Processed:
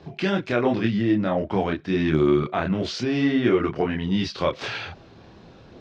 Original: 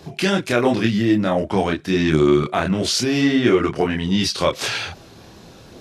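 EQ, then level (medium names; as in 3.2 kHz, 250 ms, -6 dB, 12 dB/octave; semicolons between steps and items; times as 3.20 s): distance through air 200 m; -3.5 dB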